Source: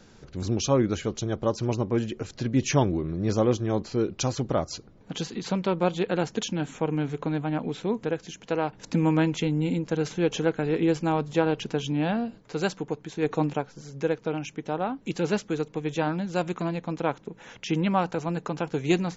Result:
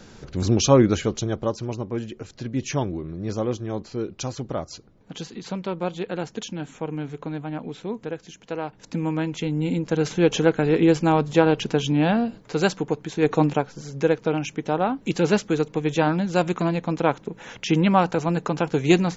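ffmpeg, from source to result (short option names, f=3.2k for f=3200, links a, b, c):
-af "volume=16dB,afade=t=out:st=0.83:d=0.84:silence=0.316228,afade=t=in:st=9.26:d=0.99:silence=0.354813"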